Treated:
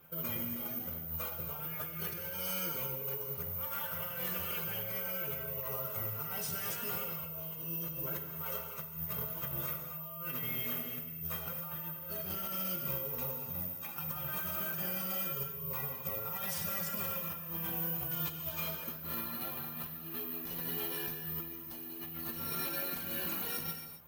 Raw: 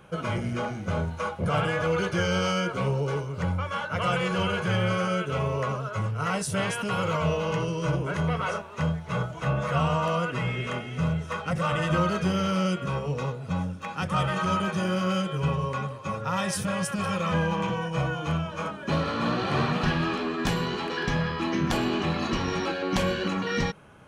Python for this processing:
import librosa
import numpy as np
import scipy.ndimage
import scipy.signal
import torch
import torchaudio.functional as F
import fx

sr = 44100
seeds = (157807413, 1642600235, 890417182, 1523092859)

y = fx.cvsd(x, sr, bps=64000)
y = fx.stiff_resonator(y, sr, f0_hz=78.0, decay_s=0.27, stiffness=0.008)
y = fx.over_compress(y, sr, threshold_db=-39.0, ratio=-1.0)
y = (np.kron(scipy.signal.resample_poly(y, 1, 3), np.eye(3)[0]) * 3)[:len(y)]
y = fx.peak_eq(y, sr, hz=4100.0, db=9.0, octaves=1.6, at=(18.11, 18.76))
y = fx.rev_gated(y, sr, seeds[0], gate_ms=290, shape='flat', drr_db=4.5)
y = fx.dynamic_eq(y, sr, hz=6800.0, q=0.71, threshold_db=-52.0, ratio=4.0, max_db=5)
y = y * 10.0 ** (-7.0 / 20.0)